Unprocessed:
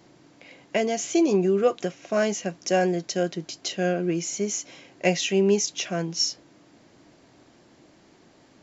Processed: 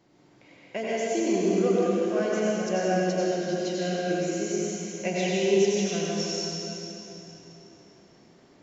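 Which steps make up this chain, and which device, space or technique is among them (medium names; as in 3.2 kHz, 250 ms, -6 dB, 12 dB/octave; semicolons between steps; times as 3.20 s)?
swimming-pool hall (reverberation RT60 3.4 s, pre-delay 77 ms, DRR -6.5 dB; treble shelf 4.4 kHz -4.5 dB); trim -8.5 dB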